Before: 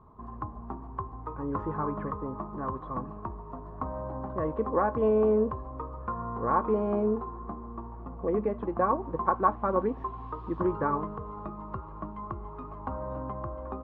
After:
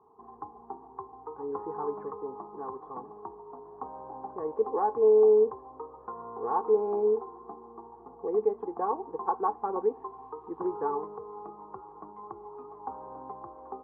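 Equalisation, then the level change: double band-pass 590 Hz, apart 0.86 oct; +5.0 dB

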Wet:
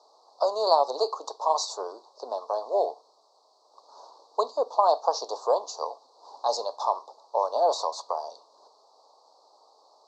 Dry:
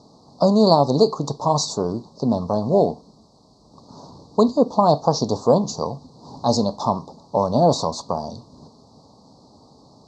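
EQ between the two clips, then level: Bessel high-pass 800 Hz, order 8; high shelf 3100 Hz -9 dB; 0.0 dB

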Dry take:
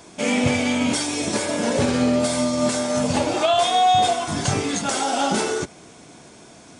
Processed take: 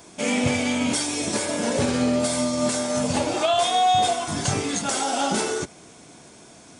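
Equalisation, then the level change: high shelf 8700 Hz +7 dB; -2.5 dB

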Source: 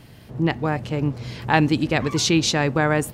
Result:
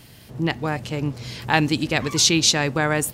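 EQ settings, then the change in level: high shelf 2900 Hz +11 dB; -2.5 dB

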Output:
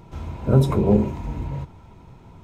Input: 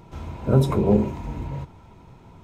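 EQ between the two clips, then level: low shelf 150 Hz +3.5 dB; 0.0 dB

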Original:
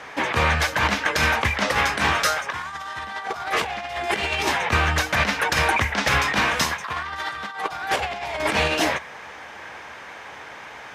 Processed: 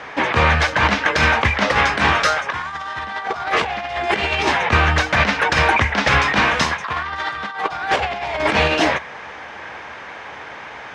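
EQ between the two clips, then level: air absorption 100 m; +5.5 dB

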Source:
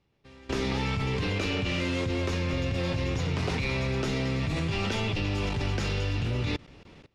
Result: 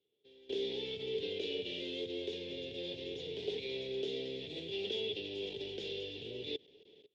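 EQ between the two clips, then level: double band-pass 1200 Hz, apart 3 oct; +1.0 dB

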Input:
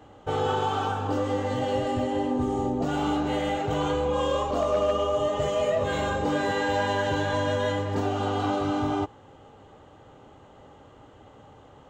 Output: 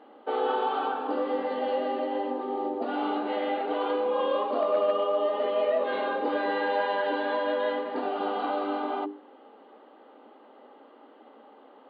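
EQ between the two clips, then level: brick-wall FIR band-pass 210–4800 Hz; high shelf 3500 Hz -11 dB; notches 50/100/150/200/250/300/350/400 Hz; 0.0 dB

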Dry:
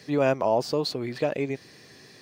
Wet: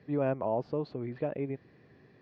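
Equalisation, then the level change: LPF 2400 Hz 12 dB/oct; air absorption 59 m; tilt -2 dB/oct; -9.0 dB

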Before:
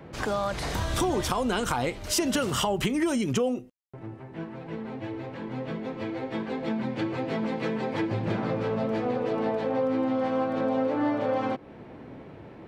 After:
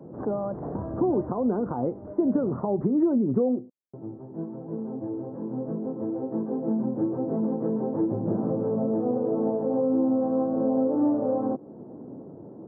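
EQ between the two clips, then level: Gaussian blur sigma 10 samples; HPF 230 Hz 12 dB/oct; low shelf 380 Hz +10.5 dB; 0.0 dB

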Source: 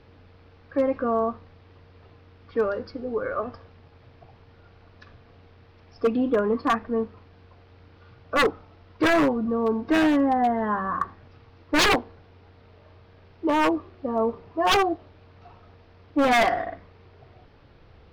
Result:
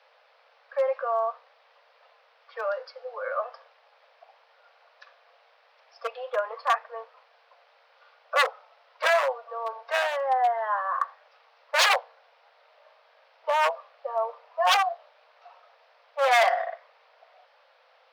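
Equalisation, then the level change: steep high-pass 510 Hz 96 dB/oct; 0.0 dB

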